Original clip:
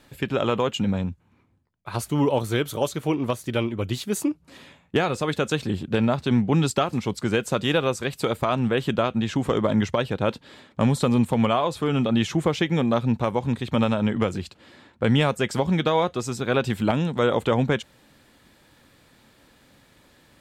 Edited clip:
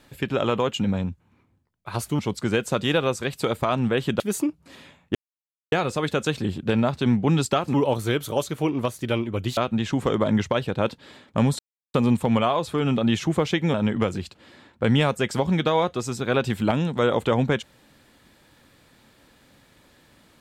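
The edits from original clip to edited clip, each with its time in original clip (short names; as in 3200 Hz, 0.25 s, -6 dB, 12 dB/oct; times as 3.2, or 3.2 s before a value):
2.19–4.02 swap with 6.99–9
4.97 insert silence 0.57 s
11.02 insert silence 0.35 s
12.82–13.94 cut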